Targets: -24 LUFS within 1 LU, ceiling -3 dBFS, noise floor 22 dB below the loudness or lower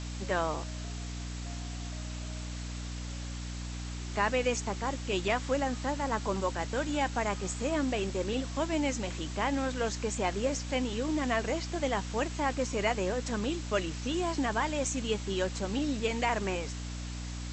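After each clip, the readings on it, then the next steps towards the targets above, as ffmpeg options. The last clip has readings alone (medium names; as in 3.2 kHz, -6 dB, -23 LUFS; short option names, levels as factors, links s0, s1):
hum 60 Hz; highest harmonic 300 Hz; hum level -36 dBFS; noise floor -39 dBFS; noise floor target -55 dBFS; loudness -32.5 LUFS; peak level -15.0 dBFS; loudness target -24.0 LUFS
-> -af "bandreject=f=60:t=h:w=4,bandreject=f=120:t=h:w=4,bandreject=f=180:t=h:w=4,bandreject=f=240:t=h:w=4,bandreject=f=300:t=h:w=4"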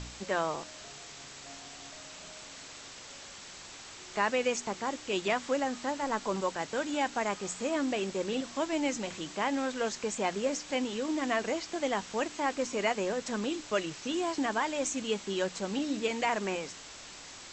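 hum not found; noise floor -48 dBFS; noise floor target -55 dBFS
-> -af "afftdn=nr=7:nf=-48"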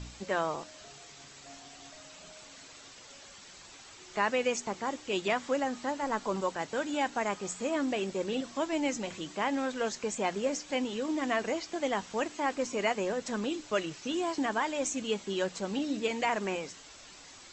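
noise floor -52 dBFS; noise floor target -55 dBFS
-> -af "afftdn=nr=6:nf=-52"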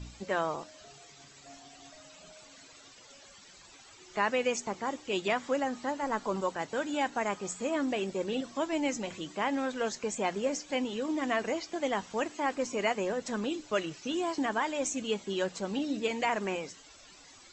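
noise floor -55 dBFS; loudness -32.5 LUFS; peak level -16.0 dBFS; loudness target -24.0 LUFS
-> -af "volume=2.66"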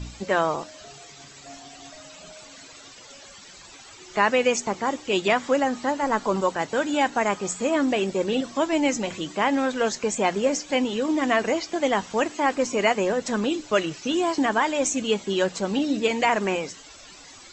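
loudness -24.0 LUFS; peak level -7.5 dBFS; noise floor -46 dBFS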